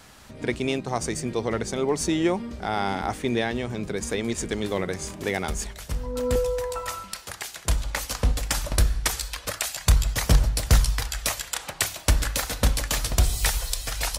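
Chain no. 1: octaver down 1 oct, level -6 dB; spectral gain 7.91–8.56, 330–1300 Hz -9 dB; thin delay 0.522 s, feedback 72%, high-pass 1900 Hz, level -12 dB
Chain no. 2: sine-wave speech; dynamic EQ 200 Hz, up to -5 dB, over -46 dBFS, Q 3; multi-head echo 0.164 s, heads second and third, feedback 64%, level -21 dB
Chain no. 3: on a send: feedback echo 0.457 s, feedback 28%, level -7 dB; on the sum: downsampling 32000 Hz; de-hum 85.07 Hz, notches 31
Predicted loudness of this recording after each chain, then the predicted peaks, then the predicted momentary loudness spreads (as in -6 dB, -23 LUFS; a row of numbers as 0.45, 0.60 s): -26.0, -24.0, -25.5 LUFS; -5.0, -5.0, -6.0 dBFS; 9, 19, 7 LU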